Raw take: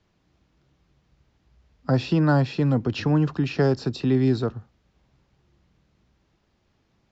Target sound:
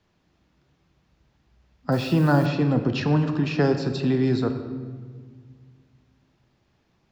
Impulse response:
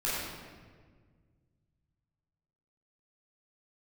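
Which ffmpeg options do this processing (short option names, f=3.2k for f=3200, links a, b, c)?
-filter_complex "[0:a]bass=f=250:g=3,treble=f=4k:g=-1,asplit=2[a][b];[1:a]atrim=start_sample=2205[c];[b][c]afir=irnorm=-1:irlink=0,volume=-14dB[d];[a][d]amix=inputs=2:normalize=0,asettb=1/sr,asplit=3[e][f][g];[e]atrim=end=1.924[h];[f]atrim=start=1.92:end=2.46,asetpts=PTS-STARTPTS,afade=t=in:d=0.004:c=qsin,afade=t=out:st=0.536:d=0.004:c=qsin,acrusher=bits=6:mix=0:aa=0.5[i];[g]atrim=start=2.456[j];[h][i]acrossfade=d=0.004:c1=hsin:c2=qsin[k];[k][j]acrossfade=d=0.004:c1=qsin:c2=hsin,lowshelf=f=150:g=-9.5"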